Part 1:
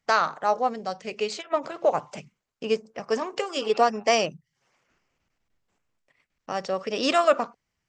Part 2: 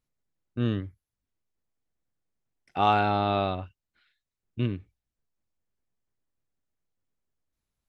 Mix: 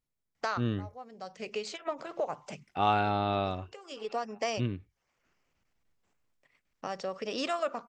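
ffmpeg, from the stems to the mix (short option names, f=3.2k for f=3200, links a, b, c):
-filter_complex "[0:a]acompressor=threshold=-33dB:ratio=2,adelay=350,volume=-2.5dB[a];[1:a]volume=-4dB,asplit=2[b][c];[c]apad=whole_len=363048[d];[a][d]sidechaincompress=threshold=-42dB:ratio=16:attack=12:release=609[e];[e][b]amix=inputs=2:normalize=0"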